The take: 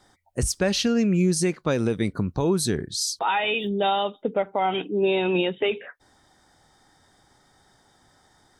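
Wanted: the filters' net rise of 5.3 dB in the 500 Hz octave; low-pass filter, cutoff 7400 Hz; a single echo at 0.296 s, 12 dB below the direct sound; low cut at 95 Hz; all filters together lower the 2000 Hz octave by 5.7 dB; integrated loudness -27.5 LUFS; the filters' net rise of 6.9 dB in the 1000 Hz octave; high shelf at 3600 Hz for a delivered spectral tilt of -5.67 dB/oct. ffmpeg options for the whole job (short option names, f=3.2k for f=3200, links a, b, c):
-af "highpass=95,lowpass=7.4k,equalizer=f=500:t=o:g=5.5,equalizer=f=1k:t=o:g=9,equalizer=f=2k:t=o:g=-8.5,highshelf=f=3.6k:g=-7,aecho=1:1:296:0.251,volume=-7dB"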